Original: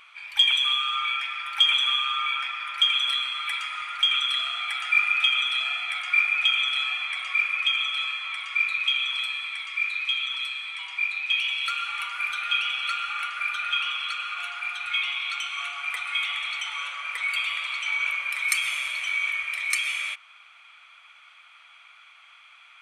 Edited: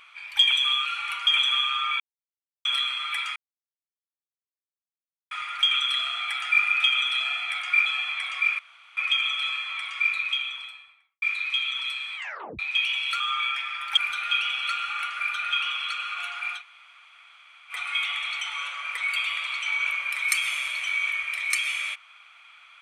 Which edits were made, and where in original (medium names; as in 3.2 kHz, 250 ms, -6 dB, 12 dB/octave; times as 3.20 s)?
0.85–1.62 s: swap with 11.75–12.17 s
2.35–3.00 s: mute
3.71 s: insert silence 1.95 s
6.26–6.79 s: delete
7.52 s: insert room tone 0.38 s
8.64–9.77 s: studio fade out
10.71 s: tape stop 0.43 s
14.79–15.93 s: room tone, crossfade 0.10 s